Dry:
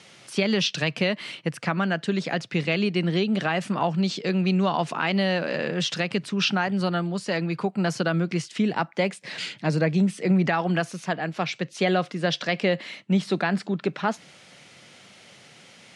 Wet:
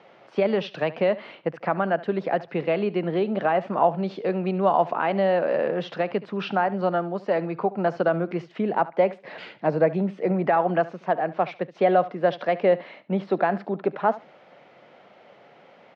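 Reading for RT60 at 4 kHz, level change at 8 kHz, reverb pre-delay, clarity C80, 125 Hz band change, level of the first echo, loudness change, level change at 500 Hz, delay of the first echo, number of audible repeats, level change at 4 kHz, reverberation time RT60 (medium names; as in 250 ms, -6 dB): no reverb, under -25 dB, no reverb, no reverb, -5.5 dB, -18.0 dB, +0.5 dB, +5.0 dB, 72 ms, 2, -12.5 dB, no reverb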